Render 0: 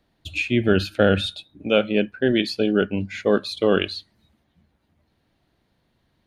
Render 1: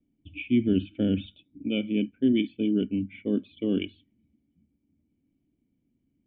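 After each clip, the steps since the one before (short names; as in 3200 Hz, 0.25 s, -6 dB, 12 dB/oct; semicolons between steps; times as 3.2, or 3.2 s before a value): low-pass opened by the level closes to 1800 Hz, open at -14 dBFS; vocal tract filter i; gain +3.5 dB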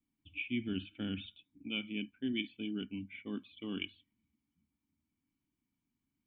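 resonant low shelf 740 Hz -9.5 dB, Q 3; gain -3 dB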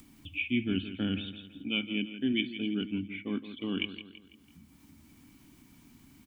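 upward compressor, threshold -45 dBFS; on a send: feedback echo 0.166 s, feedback 43%, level -12 dB; on the sum: gain +6.5 dB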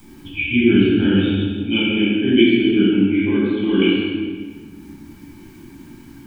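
small resonant body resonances 360/870/1600 Hz, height 11 dB, ringing for 40 ms; reverb RT60 1.5 s, pre-delay 10 ms, DRR -10 dB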